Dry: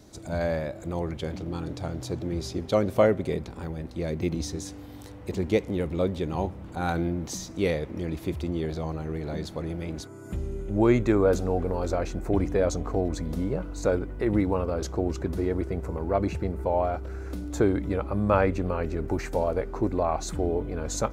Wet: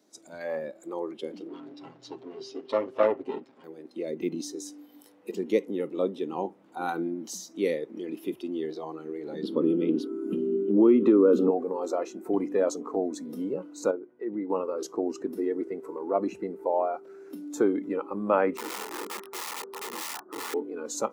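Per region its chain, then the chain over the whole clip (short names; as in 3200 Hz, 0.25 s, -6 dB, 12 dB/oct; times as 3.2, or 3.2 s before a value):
1.48–3.64 minimum comb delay 7.5 ms + LPF 4800 Hz
9.43–11.51 EQ curve 100 Hz 0 dB, 250 Hz +15 dB, 450 Hz +11 dB, 730 Hz -1 dB, 1300 Hz +6 dB, 1900 Hz -1 dB, 3100 Hz +8 dB, 6600 Hz -8 dB, 9600 Hz -4 dB + compressor 4:1, threshold -15 dBFS
13.91–14.5 tape spacing loss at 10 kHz 23 dB + resonator 120 Hz, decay 1.9 s, mix 50%
18.57–20.54 steep low-pass 1500 Hz 48 dB/oct + wrapped overs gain 27.5 dB
whole clip: HPF 230 Hz 24 dB/oct; spectral noise reduction 12 dB; dynamic EQ 3100 Hz, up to -6 dB, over -48 dBFS, Q 0.89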